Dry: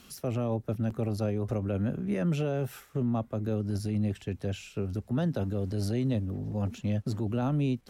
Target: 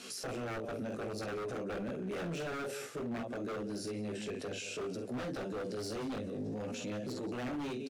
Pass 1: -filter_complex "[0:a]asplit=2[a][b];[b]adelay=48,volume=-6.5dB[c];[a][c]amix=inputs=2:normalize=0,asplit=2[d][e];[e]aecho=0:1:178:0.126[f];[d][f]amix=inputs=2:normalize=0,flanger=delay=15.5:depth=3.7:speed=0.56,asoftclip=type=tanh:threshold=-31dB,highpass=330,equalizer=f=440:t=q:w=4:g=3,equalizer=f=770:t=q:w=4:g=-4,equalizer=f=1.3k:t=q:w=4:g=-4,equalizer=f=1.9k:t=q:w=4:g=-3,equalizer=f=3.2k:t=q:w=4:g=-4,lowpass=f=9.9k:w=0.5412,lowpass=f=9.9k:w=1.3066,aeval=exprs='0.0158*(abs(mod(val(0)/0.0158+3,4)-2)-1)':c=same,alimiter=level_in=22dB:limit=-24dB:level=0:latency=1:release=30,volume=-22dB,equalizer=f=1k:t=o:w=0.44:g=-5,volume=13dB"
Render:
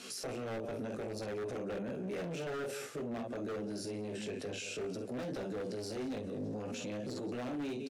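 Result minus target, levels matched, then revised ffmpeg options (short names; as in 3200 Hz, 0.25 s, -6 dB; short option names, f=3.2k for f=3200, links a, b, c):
soft clip: distortion +8 dB
-filter_complex "[0:a]asplit=2[a][b];[b]adelay=48,volume=-6.5dB[c];[a][c]amix=inputs=2:normalize=0,asplit=2[d][e];[e]aecho=0:1:178:0.126[f];[d][f]amix=inputs=2:normalize=0,flanger=delay=15.5:depth=3.7:speed=0.56,asoftclip=type=tanh:threshold=-24dB,highpass=330,equalizer=f=440:t=q:w=4:g=3,equalizer=f=770:t=q:w=4:g=-4,equalizer=f=1.3k:t=q:w=4:g=-4,equalizer=f=1.9k:t=q:w=4:g=-3,equalizer=f=3.2k:t=q:w=4:g=-4,lowpass=f=9.9k:w=0.5412,lowpass=f=9.9k:w=1.3066,aeval=exprs='0.0158*(abs(mod(val(0)/0.0158+3,4)-2)-1)':c=same,alimiter=level_in=22dB:limit=-24dB:level=0:latency=1:release=30,volume=-22dB,equalizer=f=1k:t=o:w=0.44:g=-5,volume=13dB"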